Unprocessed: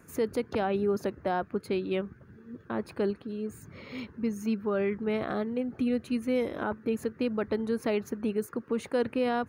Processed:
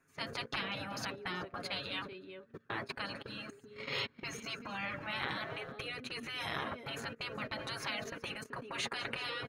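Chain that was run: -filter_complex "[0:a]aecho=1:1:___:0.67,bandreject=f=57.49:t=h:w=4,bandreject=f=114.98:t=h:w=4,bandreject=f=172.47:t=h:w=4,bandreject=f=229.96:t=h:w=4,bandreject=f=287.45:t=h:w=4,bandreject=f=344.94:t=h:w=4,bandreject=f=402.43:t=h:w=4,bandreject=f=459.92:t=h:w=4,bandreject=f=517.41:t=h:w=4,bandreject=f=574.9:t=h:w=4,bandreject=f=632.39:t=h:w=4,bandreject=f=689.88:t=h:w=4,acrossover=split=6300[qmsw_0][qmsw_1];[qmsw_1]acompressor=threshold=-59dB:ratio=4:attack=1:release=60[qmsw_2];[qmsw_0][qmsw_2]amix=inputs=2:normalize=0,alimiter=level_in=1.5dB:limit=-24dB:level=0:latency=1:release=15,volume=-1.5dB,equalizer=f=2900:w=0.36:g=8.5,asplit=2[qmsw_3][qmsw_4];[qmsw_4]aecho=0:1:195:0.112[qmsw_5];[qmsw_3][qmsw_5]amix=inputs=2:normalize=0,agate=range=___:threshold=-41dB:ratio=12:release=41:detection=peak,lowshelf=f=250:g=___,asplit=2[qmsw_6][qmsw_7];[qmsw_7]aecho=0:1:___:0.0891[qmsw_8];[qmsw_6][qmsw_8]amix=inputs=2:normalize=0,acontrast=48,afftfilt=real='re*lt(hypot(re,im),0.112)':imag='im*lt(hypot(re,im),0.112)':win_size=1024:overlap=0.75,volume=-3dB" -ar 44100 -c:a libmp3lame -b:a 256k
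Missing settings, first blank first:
7.3, -23dB, -2, 380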